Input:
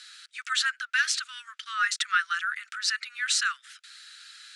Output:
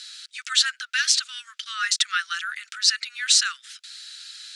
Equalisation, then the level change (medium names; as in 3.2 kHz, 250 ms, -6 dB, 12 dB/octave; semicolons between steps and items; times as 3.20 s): treble shelf 2.8 kHz +9 dB; peaking EQ 4.4 kHz +8.5 dB 2.2 oct; -6.0 dB